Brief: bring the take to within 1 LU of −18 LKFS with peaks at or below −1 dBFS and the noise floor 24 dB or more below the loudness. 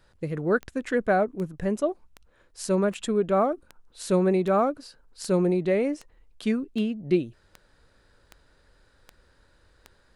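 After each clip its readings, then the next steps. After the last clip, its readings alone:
number of clicks 13; integrated loudness −26.0 LKFS; sample peak −10.5 dBFS; target loudness −18.0 LKFS
→ click removal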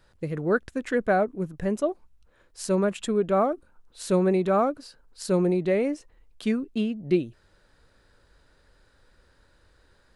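number of clicks 0; integrated loudness −26.0 LKFS; sample peak −10.5 dBFS; target loudness −18.0 LKFS
→ level +8 dB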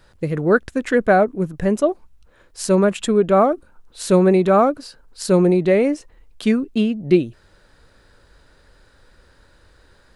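integrated loudness −18.0 LKFS; sample peak −2.5 dBFS; background noise floor −54 dBFS

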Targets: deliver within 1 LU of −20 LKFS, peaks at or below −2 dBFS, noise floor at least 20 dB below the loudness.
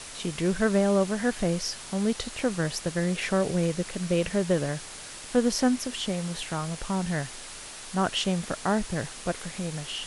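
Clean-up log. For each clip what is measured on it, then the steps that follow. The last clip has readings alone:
background noise floor −42 dBFS; target noise floor −48 dBFS; integrated loudness −28.0 LKFS; sample peak −10.5 dBFS; target loudness −20.0 LKFS
→ noise reduction from a noise print 6 dB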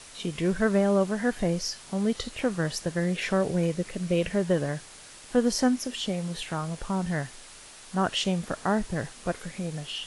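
background noise floor −48 dBFS; integrated loudness −28.0 LKFS; sample peak −10.5 dBFS; target loudness −20.0 LKFS
→ level +8 dB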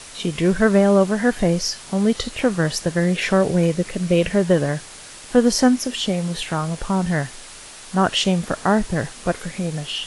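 integrated loudness −20.0 LKFS; sample peak −2.5 dBFS; background noise floor −40 dBFS

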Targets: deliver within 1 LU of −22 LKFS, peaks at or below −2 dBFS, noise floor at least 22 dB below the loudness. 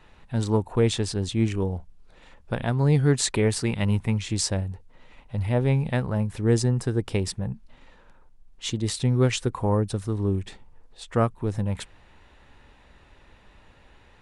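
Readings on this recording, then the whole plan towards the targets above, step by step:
integrated loudness −25.5 LKFS; sample peak −7.5 dBFS; target loudness −22.0 LKFS
→ level +3.5 dB

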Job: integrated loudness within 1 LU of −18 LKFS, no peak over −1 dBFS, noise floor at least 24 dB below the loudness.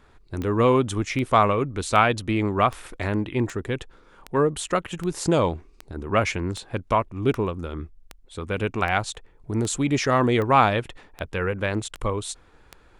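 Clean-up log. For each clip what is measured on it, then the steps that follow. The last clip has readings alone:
number of clicks 17; integrated loudness −24.0 LKFS; sample peak −4.0 dBFS; target loudness −18.0 LKFS
→ click removal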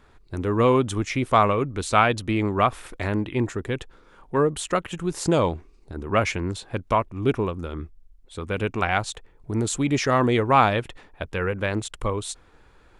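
number of clicks 0; integrated loudness −24.0 LKFS; sample peak −4.0 dBFS; target loudness −18.0 LKFS
→ level +6 dB
brickwall limiter −1 dBFS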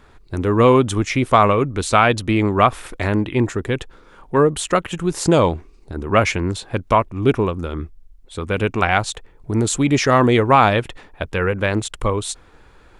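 integrated loudness −18.0 LKFS; sample peak −1.0 dBFS; background noise floor −48 dBFS

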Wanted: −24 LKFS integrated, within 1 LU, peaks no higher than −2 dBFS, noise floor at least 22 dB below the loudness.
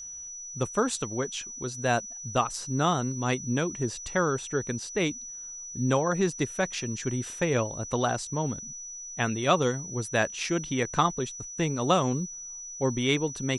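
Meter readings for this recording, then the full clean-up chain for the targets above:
interfering tone 5,900 Hz; level of the tone −38 dBFS; integrated loudness −29.0 LKFS; sample peak −8.5 dBFS; target loudness −24.0 LKFS
→ notch filter 5,900 Hz, Q 30
level +5 dB

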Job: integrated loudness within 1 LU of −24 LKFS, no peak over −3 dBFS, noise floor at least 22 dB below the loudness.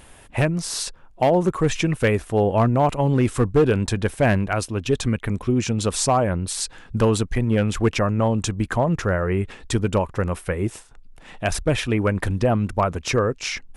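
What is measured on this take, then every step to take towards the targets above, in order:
share of clipped samples 0.5%; peaks flattened at −10.5 dBFS; integrated loudness −22.0 LKFS; sample peak −10.5 dBFS; target loudness −24.0 LKFS
→ clipped peaks rebuilt −10.5 dBFS
level −2 dB

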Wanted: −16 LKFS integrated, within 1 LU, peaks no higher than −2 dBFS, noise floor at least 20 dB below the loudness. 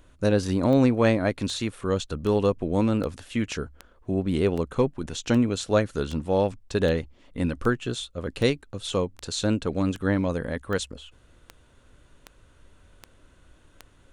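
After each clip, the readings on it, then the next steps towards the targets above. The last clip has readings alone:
number of clicks 18; integrated loudness −26.0 LKFS; sample peak −7.5 dBFS; target loudness −16.0 LKFS
→ click removal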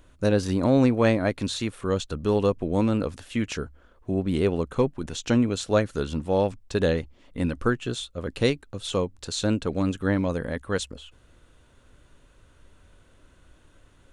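number of clicks 0; integrated loudness −26.0 LKFS; sample peak −7.5 dBFS; target loudness −16.0 LKFS
→ level +10 dB
brickwall limiter −2 dBFS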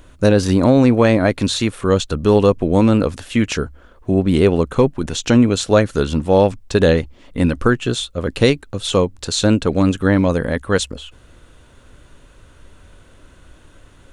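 integrated loudness −16.5 LKFS; sample peak −2.0 dBFS; background noise floor −48 dBFS

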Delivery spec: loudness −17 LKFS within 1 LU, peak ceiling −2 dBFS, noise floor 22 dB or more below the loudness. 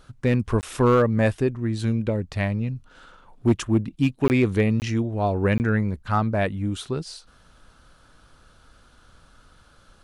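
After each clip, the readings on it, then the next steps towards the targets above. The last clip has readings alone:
share of clipped samples 0.3%; peaks flattened at −11.5 dBFS; number of dropouts 4; longest dropout 19 ms; integrated loudness −23.5 LKFS; sample peak −11.5 dBFS; target loudness −17.0 LKFS
→ clipped peaks rebuilt −11.5 dBFS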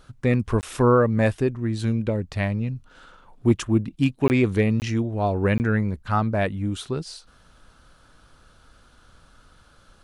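share of clipped samples 0.0%; number of dropouts 4; longest dropout 19 ms
→ repair the gap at 0:00.61/0:04.28/0:04.80/0:05.58, 19 ms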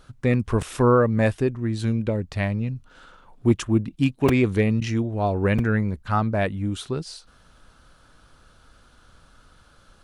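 number of dropouts 0; integrated loudness −23.0 LKFS; sample peak −6.5 dBFS; target loudness −17.0 LKFS
→ level +6 dB
brickwall limiter −2 dBFS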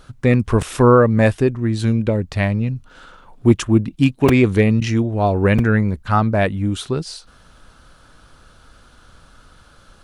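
integrated loudness −17.0 LKFS; sample peak −2.0 dBFS; background noise floor −50 dBFS

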